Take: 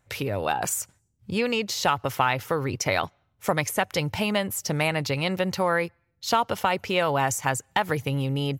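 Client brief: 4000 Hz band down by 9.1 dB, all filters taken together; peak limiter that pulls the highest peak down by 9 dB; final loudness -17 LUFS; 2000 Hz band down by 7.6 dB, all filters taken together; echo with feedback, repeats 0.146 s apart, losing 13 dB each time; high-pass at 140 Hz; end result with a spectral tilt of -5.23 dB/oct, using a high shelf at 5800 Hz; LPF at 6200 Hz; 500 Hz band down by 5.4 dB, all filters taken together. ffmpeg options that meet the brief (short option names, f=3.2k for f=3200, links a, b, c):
-af "highpass=140,lowpass=6.2k,equalizer=f=500:t=o:g=-6,equalizer=f=2k:t=o:g=-7,equalizer=f=4k:t=o:g=-8,highshelf=f=5.8k:g=-3,alimiter=limit=-21dB:level=0:latency=1,aecho=1:1:146|292|438:0.224|0.0493|0.0108,volume=16dB"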